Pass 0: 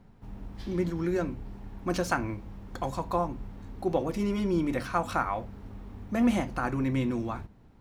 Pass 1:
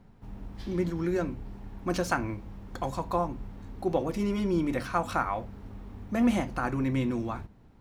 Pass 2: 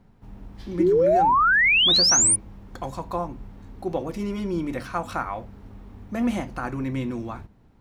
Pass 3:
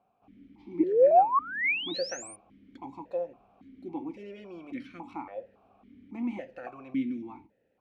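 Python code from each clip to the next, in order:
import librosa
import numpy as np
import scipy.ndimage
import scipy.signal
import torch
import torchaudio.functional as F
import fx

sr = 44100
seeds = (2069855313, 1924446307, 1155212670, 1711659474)

y1 = x
y2 = fx.spec_paint(y1, sr, seeds[0], shape='rise', start_s=0.79, length_s=1.57, low_hz=310.0, high_hz=9800.0, level_db=-18.0)
y3 = fx.vowel_held(y2, sr, hz=3.6)
y3 = F.gain(torch.from_numpy(y3), 2.5).numpy()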